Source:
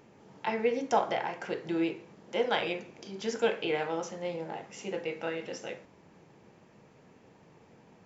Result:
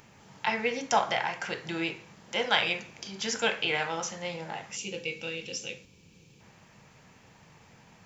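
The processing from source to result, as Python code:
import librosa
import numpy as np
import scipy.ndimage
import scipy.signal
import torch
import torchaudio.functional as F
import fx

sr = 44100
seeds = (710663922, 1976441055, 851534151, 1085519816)

y = fx.high_shelf(x, sr, hz=6800.0, db=5.0)
y = fx.spec_box(y, sr, start_s=4.77, length_s=1.63, low_hz=540.0, high_hz=2200.0, gain_db=-14)
y = fx.peak_eq(y, sr, hz=370.0, db=-14.0, octaves=2.1)
y = y * 10.0 ** (8.5 / 20.0)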